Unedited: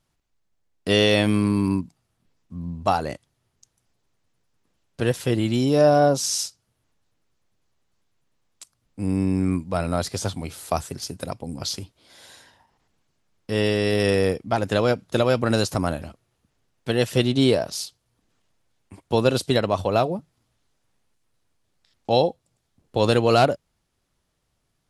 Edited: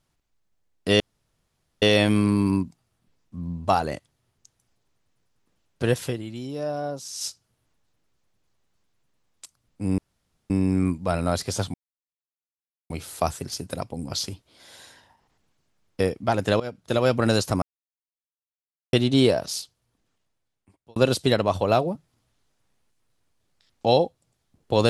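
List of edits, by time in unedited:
1.00 s: insert room tone 0.82 s
5.25–6.44 s: dip -13 dB, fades 0.49 s exponential
9.16 s: insert room tone 0.52 s
10.40 s: insert silence 1.16 s
13.50–14.24 s: delete
14.84–15.34 s: fade in, from -18 dB
15.86–17.17 s: mute
17.73–19.20 s: fade out

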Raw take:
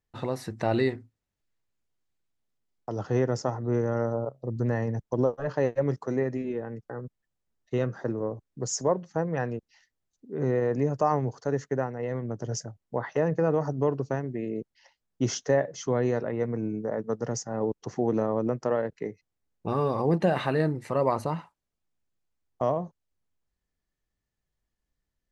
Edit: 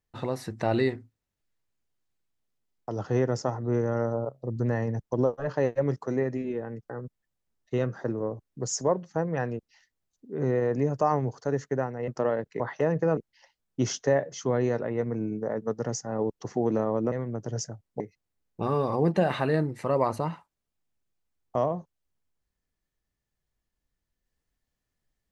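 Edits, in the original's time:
12.08–12.96 s: swap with 18.54–19.06 s
13.53–14.59 s: delete

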